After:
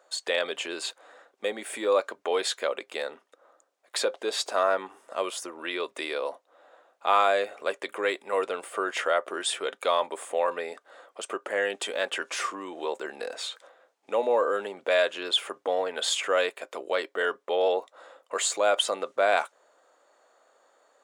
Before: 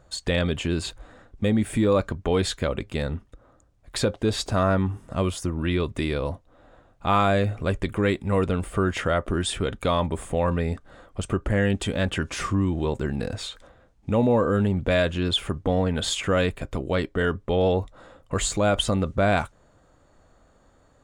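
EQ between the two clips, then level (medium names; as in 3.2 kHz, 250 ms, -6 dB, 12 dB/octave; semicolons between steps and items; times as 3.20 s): high-pass 450 Hz 24 dB/octave; 0.0 dB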